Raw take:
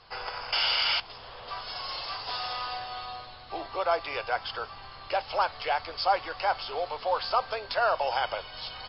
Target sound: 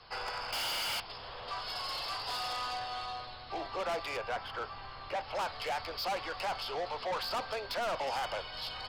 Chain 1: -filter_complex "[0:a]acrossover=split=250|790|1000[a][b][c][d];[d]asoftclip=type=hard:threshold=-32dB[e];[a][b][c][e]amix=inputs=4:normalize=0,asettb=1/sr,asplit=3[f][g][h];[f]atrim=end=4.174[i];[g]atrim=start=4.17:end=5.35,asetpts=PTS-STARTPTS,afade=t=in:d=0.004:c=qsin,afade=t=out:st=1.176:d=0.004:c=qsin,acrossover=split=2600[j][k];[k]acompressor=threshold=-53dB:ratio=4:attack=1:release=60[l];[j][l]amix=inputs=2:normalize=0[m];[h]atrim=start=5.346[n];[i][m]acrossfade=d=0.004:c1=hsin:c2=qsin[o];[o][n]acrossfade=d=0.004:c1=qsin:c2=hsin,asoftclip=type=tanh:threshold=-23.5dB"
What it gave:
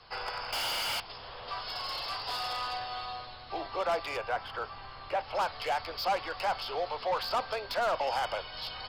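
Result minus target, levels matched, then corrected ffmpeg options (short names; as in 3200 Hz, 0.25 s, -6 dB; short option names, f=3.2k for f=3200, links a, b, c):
soft clip: distortion -7 dB
-filter_complex "[0:a]acrossover=split=250|790|1000[a][b][c][d];[d]asoftclip=type=hard:threshold=-32dB[e];[a][b][c][e]amix=inputs=4:normalize=0,asettb=1/sr,asplit=3[f][g][h];[f]atrim=end=4.174[i];[g]atrim=start=4.17:end=5.35,asetpts=PTS-STARTPTS,afade=t=in:d=0.004:c=qsin,afade=t=out:st=1.176:d=0.004:c=qsin,acrossover=split=2600[j][k];[k]acompressor=threshold=-53dB:ratio=4:attack=1:release=60[l];[j][l]amix=inputs=2:normalize=0[m];[h]atrim=start=5.346[n];[i][m]acrossfade=d=0.004:c1=hsin:c2=qsin[o];[o][n]acrossfade=d=0.004:c1=qsin:c2=hsin,asoftclip=type=tanh:threshold=-31dB"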